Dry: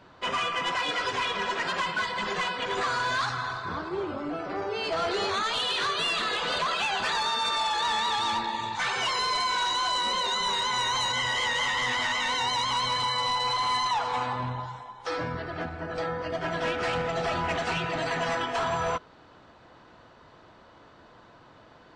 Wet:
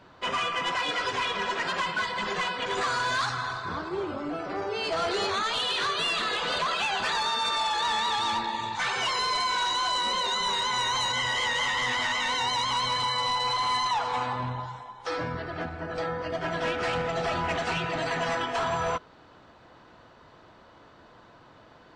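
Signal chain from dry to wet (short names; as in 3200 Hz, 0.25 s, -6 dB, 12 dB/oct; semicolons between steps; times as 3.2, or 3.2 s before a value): 2.66–5.27 high shelf 8200 Hz +8 dB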